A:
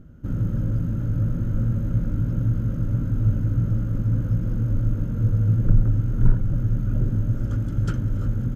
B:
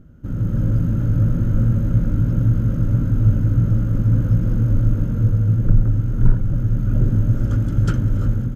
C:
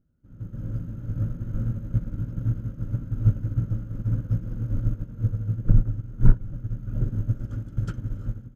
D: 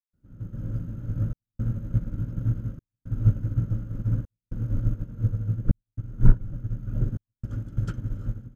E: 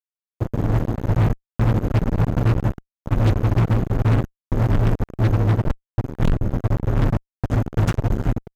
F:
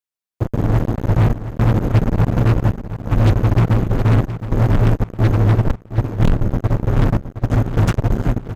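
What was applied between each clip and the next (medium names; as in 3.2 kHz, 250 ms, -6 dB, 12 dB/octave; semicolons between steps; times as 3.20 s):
level rider gain up to 6 dB
upward expansion 2.5:1, over -24 dBFS; trim +1.5 dB
trance gate ".xxxxxxxxx." 113 bpm -60 dB
fuzz box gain 35 dB, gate -33 dBFS
feedback delay 718 ms, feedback 32%, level -11.5 dB; trim +3.5 dB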